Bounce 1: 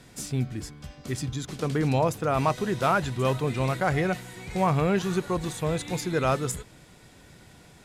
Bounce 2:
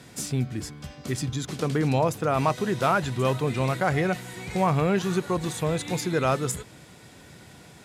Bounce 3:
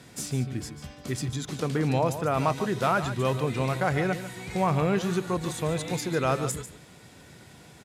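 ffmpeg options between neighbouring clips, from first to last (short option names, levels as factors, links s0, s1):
-filter_complex "[0:a]highpass=77,asplit=2[s0][s1];[s1]acompressor=threshold=0.0282:ratio=6,volume=0.75[s2];[s0][s2]amix=inputs=2:normalize=0,volume=0.891"
-af "aecho=1:1:145:0.266,volume=0.794"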